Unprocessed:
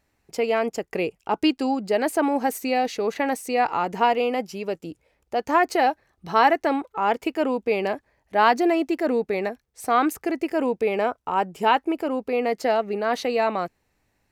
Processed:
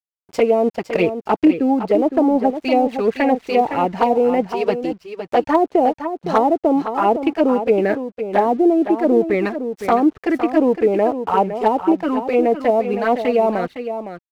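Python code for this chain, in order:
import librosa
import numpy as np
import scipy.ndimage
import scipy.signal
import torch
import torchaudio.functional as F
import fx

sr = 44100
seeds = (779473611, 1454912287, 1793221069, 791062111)

p1 = scipy.ndimage.median_filter(x, 5, mode='constant')
p2 = fx.env_flanger(p1, sr, rest_ms=11.4, full_db=-19.0)
p3 = fx.env_lowpass_down(p2, sr, base_hz=580.0, full_db=-18.5)
p4 = fx.rider(p3, sr, range_db=10, speed_s=0.5)
p5 = p3 + (p4 * 10.0 ** (-1.0 / 20.0))
p6 = np.sign(p5) * np.maximum(np.abs(p5) - 10.0 ** (-48.0 / 20.0), 0.0)
p7 = p6 + 10.0 ** (-9.5 / 20.0) * np.pad(p6, (int(511 * sr / 1000.0), 0))[:len(p6)]
p8 = np.clip(p7, -10.0 ** (-9.0 / 20.0), 10.0 ** (-9.0 / 20.0))
y = p8 * 10.0 ** (4.0 / 20.0)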